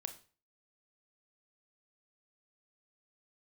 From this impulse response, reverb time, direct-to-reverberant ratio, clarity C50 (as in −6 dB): 0.40 s, 7.0 dB, 12.5 dB